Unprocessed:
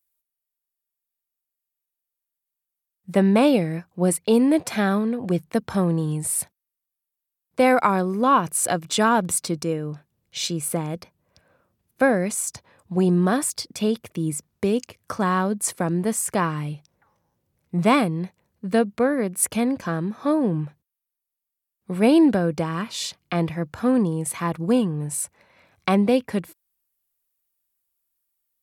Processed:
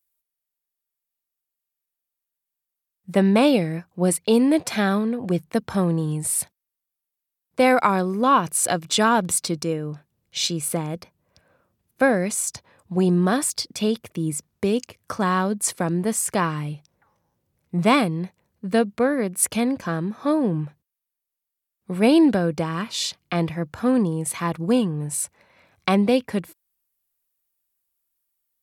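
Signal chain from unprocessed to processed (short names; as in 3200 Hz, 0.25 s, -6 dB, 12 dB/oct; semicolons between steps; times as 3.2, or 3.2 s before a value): dynamic EQ 4200 Hz, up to +4 dB, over -38 dBFS, Q 0.78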